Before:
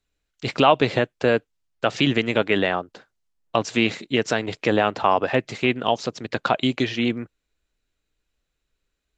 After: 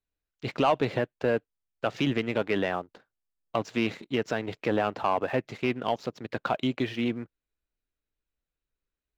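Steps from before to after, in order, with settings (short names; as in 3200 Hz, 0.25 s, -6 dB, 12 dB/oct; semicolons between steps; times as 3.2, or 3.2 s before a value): LPF 2500 Hz 6 dB/oct; sample leveller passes 1; gain -9 dB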